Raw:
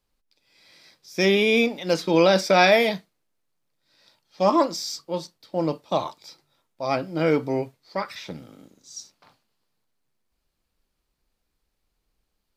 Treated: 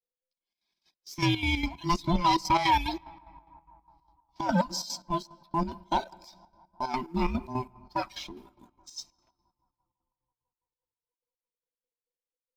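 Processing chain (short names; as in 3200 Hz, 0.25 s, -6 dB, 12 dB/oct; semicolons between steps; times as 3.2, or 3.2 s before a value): band inversion scrambler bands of 500 Hz; reverb removal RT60 0.84 s; gate -52 dBFS, range -21 dB; fifteen-band EQ 100 Hz -11 dB, 1600 Hz -10 dB, 10000 Hz -5 dB; in parallel at -1 dB: compressor, threshold -36 dBFS, peak gain reduction 19 dB; on the sum: sample leveller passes 1; narrowing echo 0.166 s, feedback 74%, band-pass 950 Hz, level -24 dB; on a send at -21 dB: reverb RT60 2.0 s, pre-delay 6 ms; on the sum: chopper 4.9 Hz, depth 65%, duty 60%; gain -6 dB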